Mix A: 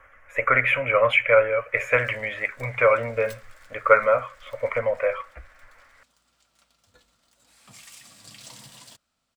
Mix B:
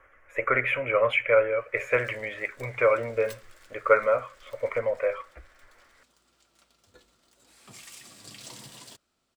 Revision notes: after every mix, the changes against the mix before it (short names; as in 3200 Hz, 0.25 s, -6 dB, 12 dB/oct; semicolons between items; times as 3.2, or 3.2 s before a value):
speech -5.5 dB; master: add bell 370 Hz +12 dB 0.52 oct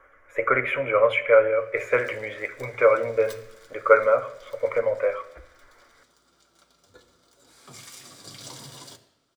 reverb: on, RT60 0.85 s